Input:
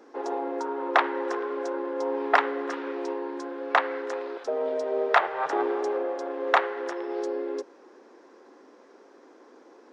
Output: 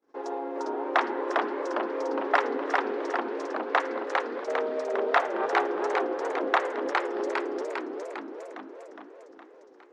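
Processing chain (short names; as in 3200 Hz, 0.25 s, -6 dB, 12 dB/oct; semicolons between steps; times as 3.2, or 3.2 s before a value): gate -50 dBFS, range -29 dB; warbling echo 0.408 s, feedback 61%, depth 209 cents, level -3 dB; gain -3 dB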